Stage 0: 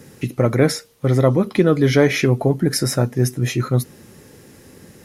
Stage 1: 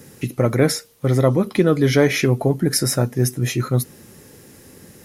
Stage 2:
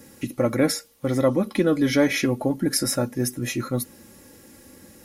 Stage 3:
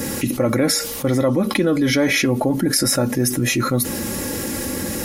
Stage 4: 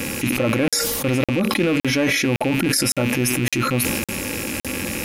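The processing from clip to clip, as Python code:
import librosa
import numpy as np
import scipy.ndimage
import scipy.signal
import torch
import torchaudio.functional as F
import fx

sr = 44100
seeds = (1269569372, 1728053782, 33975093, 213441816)

y1 = fx.high_shelf(x, sr, hz=7800.0, db=7.0)
y1 = F.gain(torch.from_numpy(y1), -1.0).numpy()
y2 = y1 + 0.57 * np.pad(y1, (int(3.6 * sr / 1000.0), 0))[:len(y1)]
y2 = F.gain(torch.from_numpy(y2), -4.5).numpy()
y3 = fx.env_flatten(y2, sr, amount_pct=70)
y4 = fx.rattle_buzz(y3, sr, strikes_db=-32.0, level_db=-15.0)
y4 = fx.buffer_crackle(y4, sr, first_s=0.68, period_s=0.56, block=2048, kind='zero')
y4 = fx.sustainer(y4, sr, db_per_s=22.0)
y4 = F.gain(torch.from_numpy(y4), -2.5).numpy()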